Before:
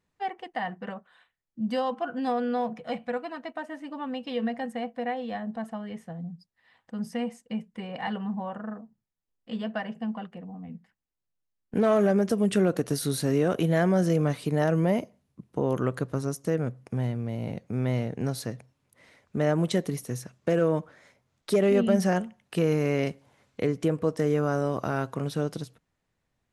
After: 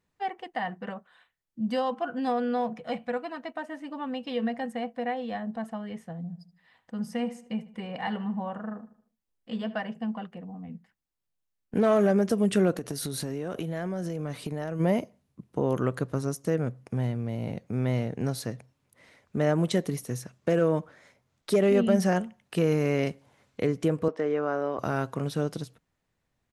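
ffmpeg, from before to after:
-filter_complex "[0:a]asplit=3[a][b][c];[a]afade=t=out:st=6.28:d=0.02[d];[b]asplit=2[e][f];[f]adelay=76,lowpass=f=4.8k:p=1,volume=-16dB,asplit=2[g][h];[h]adelay=76,lowpass=f=4.8k:p=1,volume=0.46,asplit=2[i][j];[j]adelay=76,lowpass=f=4.8k:p=1,volume=0.46,asplit=2[k][l];[l]adelay=76,lowpass=f=4.8k:p=1,volume=0.46[m];[e][g][i][k][m]amix=inputs=5:normalize=0,afade=t=in:st=6.28:d=0.02,afade=t=out:st=9.77:d=0.02[n];[c]afade=t=in:st=9.77:d=0.02[o];[d][n][o]amix=inputs=3:normalize=0,asplit=3[p][q][r];[p]afade=t=out:st=12.74:d=0.02[s];[q]acompressor=threshold=-28dB:ratio=12:attack=3.2:release=140:knee=1:detection=peak,afade=t=in:st=12.74:d=0.02,afade=t=out:st=14.79:d=0.02[t];[r]afade=t=in:st=14.79:d=0.02[u];[s][t][u]amix=inputs=3:normalize=0,asettb=1/sr,asplit=3[v][w][x];[v]atrim=end=24.084[y];[w]atrim=start=24.08:end=24.79,asetpts=PTS-STARTPTS,afade=t=in:d=0.004:c=qsin,afade=t=out:st=0.706:d=0.004:c=qsin,highpass=330,lowpass=2.8k[z];[x]atrim=start=24.786[aa];[y][z]acrossfade=d=0.004:c1=hsin:c2=qsin[ab];[ab][aa]acrossfade=d=0.004:c1=qsin:c2=hsin"

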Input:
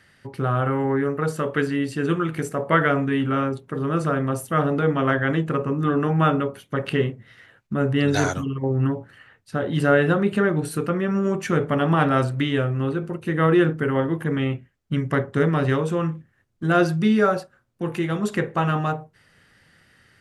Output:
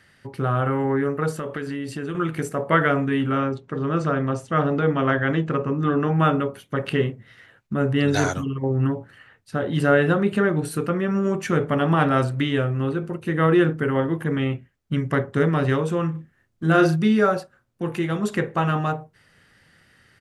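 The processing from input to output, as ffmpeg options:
-filter_complex "[0:a]asettb=1/sr,asplit=3[a][b][c];[a]atrim=end=1.324[d];[b]atrim=start=1.32:end=2.15,asetpts=PTS-STARTPTS,afade=t=in:d=0.004:c=qsin,afade=t=out:st=0.826:d=0.004:c=qsin,acompressor=threshold=-25dB:ratio=6:attack=3.2:release=140:knee=1:detection=peak[e];[c]atrim=start=2.146[f];[d][e]acrossfade=d=0.004:c1=hsin:c2=qsin[g];[g][f]acrossfade=d=0.004:c1=qsin:c2=hsin,asettb=1/sr,asplit=3[h][i][j];[h]atrim=end=3.384[k];[i]atrim=start=3.38:end=6.2,asetpts=PTS-STARTPTS,afade=t=in:d=0.004:c=qsin,afade=t=out:st=2.816:d=0.004:c=qsin,lowpass=f=7k:w=0.5412,lowpass=f=7k:w=1.3066[l];[j]atrim=start=6.196[m];[k][l]acrossfade=d=0.004:c1=hsin:c2=qsin[n];[n][m]acrossfade=d=0.004:c1=qsin:c2=hsin,asplit=3[o][p][q];[o]afade=t=out:st=16.13:d=0.02[r];[p]asplit=2[s][t];[t]adelay=37,volume=-5dB[u];[s][u]amix=inputs=2:normalize=0,afade=t=in:st=16.13:d=0.02,afade=t=out:st=16.95:d=0.02[v];[q]afade=t=in:st=16.95:d=0.02[w];[r][v][w]amix=inputs=3:normalize=0"

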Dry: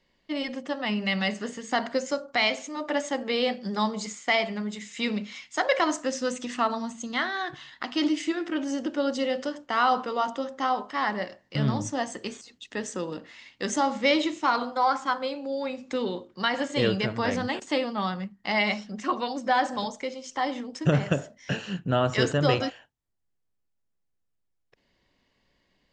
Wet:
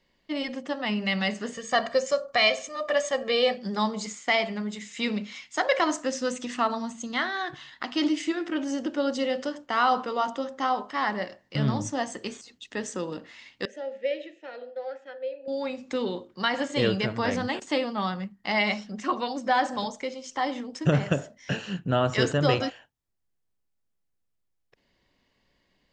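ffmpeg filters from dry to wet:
-filter_complex "[0:a]asettb=1/sr,asplit=3[a][b][c];[a]atrim=end=1.544[d];[b]atrim=start=1.54:end=3.57,asetpts=PTS-STARTPTS,afade=t=in:d=0.004:c=qsin,afade=t=out:st=2.026:d=0.004:c=qsin,aecho=1:1:1.7:0.76,atrim=end_sample=89523[e];[c]atrim=start=3.566[f];[d][e]acrossfade=d=0.004:c1=hsin:c2=qsin[g];[g][f]acrossfade=d=0.004:c1=qsin:c2=hsin,asettb=1/sr,asplit=3[h][i][j];[h]atrim=end=13.654[k];[i]atrim=start=13.65:end=15.48,asetpts=PTS-STARTPTS,afade=t=in:d=0.004:c=qsin,afade=t=out:st=1.826:d=0.004:c=qsin,asplit=3[l][m][n];[l]bandpass=f=530:t=q:w=8,volume=0dB[o];[m]bandpass=f=1.84k:t=q:w=8,volume=-6dB[p];[n]bandpass=f=2.48k:t=q:w=8,volume=-9dB[q];[o][p][q]amix=inputs=3:normalize=0[r];[j]atrim=start=15.476[s];[k][r]acrossfade=d=0.004:c1=hsin:c2=qsin[t];[t][s]acrossfade=d=0.004:c1=qsin:c2=hsin"

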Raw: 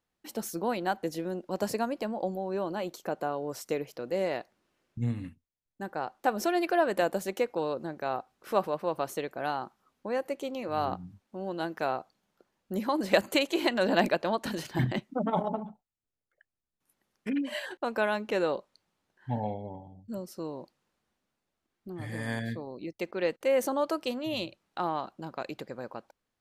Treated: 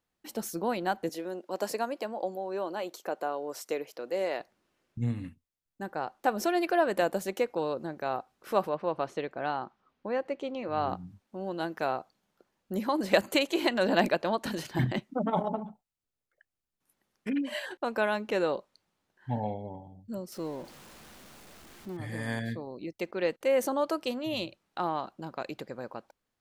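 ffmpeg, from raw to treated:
-filter_complex "[0:a]asettb=1/sr,asplit=3[a][b][c];[a]atrim=end=1.094[d];[b]atrim=start=1.09:end=4.4,asetpts=PTS-STARTPTS,afade=t=in:d=0.004:c=qsin,afade=t=out:st=3.306:d=0.004:c=qsin,highpass=330[e];[c]atrim=start=4.396[f];[d][e]acrossfade=d=0.004:c1=hsin:c2=qsin[g];[g][f]acrossfade=d=0.004:c1=qsin:c2=hsin,asettb=1/sr,asplit=3[h][i][j];[h]atrim=end=8.694[k];[i]atrim=start=8.69:end=10.89,asetpts=PTS-STARTPTS,afade=t=in:d=0.004:c=qsin,afade=t=out:st=2.196:d=0.004:c=qsin,lowpass=3.9k[l];[j]atrim=start=10.886[m];[k][l]acrossfade=d=0.004:c1=hsin:c2=qsin[n];[n][m]acrossfade=d=0.004:c1=qsin:c2=hsin,asettb=1/sr,asplit=3[o][p][q];[o]atrim=end=20.324[r];[p]atrim=start=20.32:end=21.97,asetpts=PTS-STARTPTS,afade=t=in:d=0.004:c=qsin,afade=t=out:st=1.646:d=0.004:c=qsin,aeval=exprs='val(0)+0.5*0.00531*sgn(val(0))':c=same[s];[q]atrim=start=21.966[t];[r][s]acrossfade=d=0.004:c1=hsin:c2=qsin[u];[u][t]acrossfade=d=0.004:c1=qsin:c2=hsin"

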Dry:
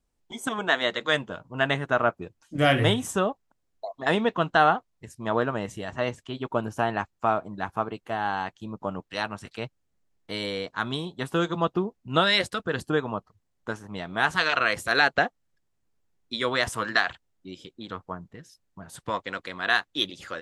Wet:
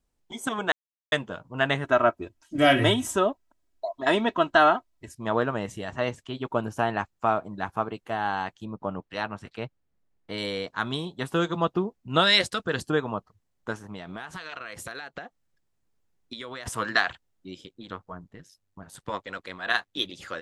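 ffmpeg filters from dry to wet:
-filter_complex "[0:a]asettb=1/sr,asplit=3[a][b][c];[a]atrim=end=1.844[d];[b]atrim=start=1.84:end=5.15,asetpts=PTS-STARTPTS,afade=t=in:d=0.004:c=qsin,afade=t=out:st=3.306:d=0.004:c=qsin,aecho=1:1:3.1:0.65,atrim=end_sample=145971[e];[c]atrim=start=5.146[f];[d][e]acrossfade=d=0.004:c1=hsin:c2=qsin[g];[g][f]acrossfade=d=0.004:c1=qsin:c2=hsin,asettb=1/sr,asplit=3[h][i][j];[h]atrim=end=8.654[k];[i]atrim=start=8.65:end=10.38,asetpts=PTS-STARTPTS,afade=t=in:d=0.004:c=qsin,afade=t=out:st=1.726:d=0.004:c=qsin,highshelf=f=4.5k:g=-12[l];[j]atrim=start=10.376[m];[k][l]acrossfade=d=0.004:c1=hsin:c2=qsin[n];[n][m]acrossfade=d=0.004:c1=qsin:c2=hsin,asettb=1/sr,asplit=3[o][p][q];[o]atrim=end=12.194[r];[p]atrim=start=12.19:end=12.91,asetpts=PTS-STARTPTS,afade=t=in:d=0.004:c=qsin,afade=t=out:st=0.716:d=0.004:c=qsin,equalizer=f=5.8k:t=o:w=1.8:g=5[s];[q]atrim=start=12.906[t];[r][s]acrossfade=d=0.004:c1=hsin:c2=qsin[u];[u][t]acrossfade=d=0.004:c1=qsin:c2=hsin,asettb=1/sr,asplit=3[v][w][x];[v]atrim=end=13.764[y];[w]atrim=start=13.76:end=16.66,asetpts=PTS-STARTPTS,afade=t=in:d=0.004:c=qsin,afade=t=out:st=2.896:d=0.004:c=qsin,acompressor=threshold=-33dB:ratio=16:attack=3.2:release=140:knee=1:detection=peak[z];[x]atrim=start=16.656[aa];[y][z]acrossfade=d=0.004:c1=hsin:c2=qsin[ab];[ab][aa]acrossfade=d=0.004:c1=qsin:c2=hsin,asettb=1/sr,asplit=3[ac][ad][ae];[ac]atrim=end=17.614[af];[ad]atrim=start=17.61:end=20.1,asetpts=PTS-STARTPTS,afade=t=in:d=0.004:c=qsin,afade=t=out:st=2.486:d=0.004:c=qsin,tremolo=f=97:d=0.621[ag];[ae]atrim=start=20.096[ah];[af][ag]acrossfade=d=0.004:c1=hsin:c2=qsin[ai];[ai][ah]acrossfade=d=0.004:c1=qsin:c2=hsin,asplit=3[aj][ak][al];[aj]atrim=end=0.72,asetpts=PTS-STARTPTS,afade=t=out:st=0.716:d=0.004:c=hsin[am];[ak]atrim=start=0.72:end=1.12,asetpts=PTS-STARTPTS,volume=0[an];[al]atrim=start=1.12,asetpts=PTS-STARTPTS,afade=t=in:d=0.004:c=hsin[ao];[am][an][ao]concat=n=3:v=0:a=1"

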